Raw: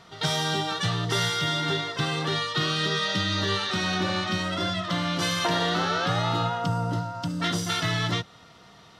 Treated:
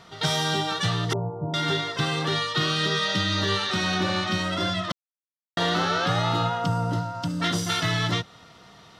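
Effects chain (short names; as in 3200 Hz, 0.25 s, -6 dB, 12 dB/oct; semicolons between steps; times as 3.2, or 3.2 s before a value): 1.13–1.54 steep low-pass 920 Hz 48 dB/oct; 4.92–5.57 mute; gain +1.5 dB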